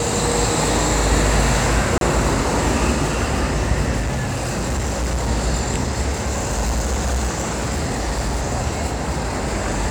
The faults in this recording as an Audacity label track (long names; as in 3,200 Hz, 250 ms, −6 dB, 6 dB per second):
1.980000	2.010000	drop-out 32 ms
3.990000	5.290000	clipping −18 dBFS
6.110000	8.430000	clipping −17 dBFS